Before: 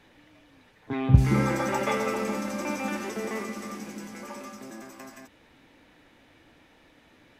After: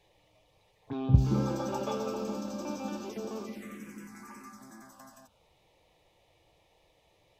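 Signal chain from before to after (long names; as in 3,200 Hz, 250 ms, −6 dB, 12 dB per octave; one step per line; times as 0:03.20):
phaser swept by the level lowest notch 230 Hz, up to 2,000 Hz, full sweep at −29 dBFS
level −4.5 dB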